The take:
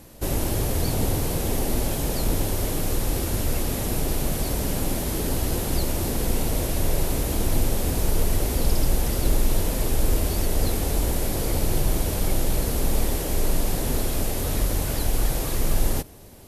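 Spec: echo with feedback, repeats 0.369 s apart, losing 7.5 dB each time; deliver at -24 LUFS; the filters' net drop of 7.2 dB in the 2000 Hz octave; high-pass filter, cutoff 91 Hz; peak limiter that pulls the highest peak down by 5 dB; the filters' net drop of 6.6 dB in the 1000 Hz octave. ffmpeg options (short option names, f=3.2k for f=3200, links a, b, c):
-af "highpass=91,equalizer=f=1k:t=o:g=-8,equalizer=f=2k:t=o:g=-7,alimiter=limit=-19.5dB:level=0:latency=1,aecho=1:1:369|738|1107|1476|1845:0.422|0.177|0.0744|0.0312|0.0131,volume=4.5dB"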